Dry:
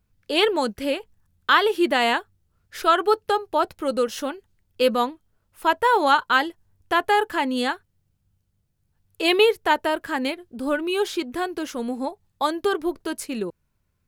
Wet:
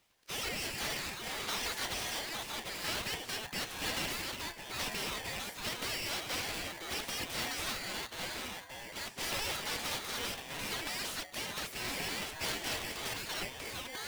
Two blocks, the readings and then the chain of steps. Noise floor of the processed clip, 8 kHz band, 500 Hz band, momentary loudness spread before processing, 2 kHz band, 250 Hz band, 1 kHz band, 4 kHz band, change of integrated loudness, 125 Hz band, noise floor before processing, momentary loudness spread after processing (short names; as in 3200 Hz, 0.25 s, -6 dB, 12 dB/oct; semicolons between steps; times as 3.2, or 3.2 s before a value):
-49 dBFS, +2.0 dB, -21.5 dB, 12 LU, -12.0 dB, -19.5 dB, -19.5 dB, -7.0 dB, -14.0 dB, n/a, -72 dBFS, 4 LU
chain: de-hum 81.55 Hz, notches 7; spectral gate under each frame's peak -25 dB weak; limiter -28.5 dBFS, peak gain reduction 9.5 dB; overdrive pedal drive 20 dB, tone 3200 Hz, clips at -28.5 dBFS; echoes that change speed 0.254 s, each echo -4 st, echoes 3; polarity switched at an audio rate 1300 Hz